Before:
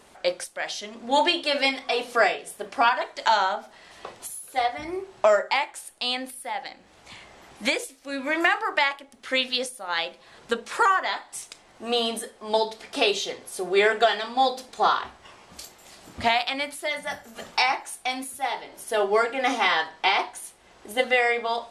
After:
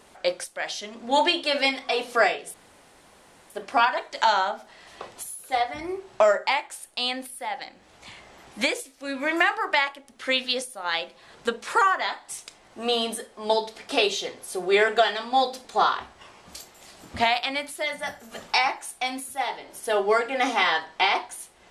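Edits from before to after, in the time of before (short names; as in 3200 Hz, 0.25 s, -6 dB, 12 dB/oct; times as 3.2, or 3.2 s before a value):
2.54 insert room tone 0.96 s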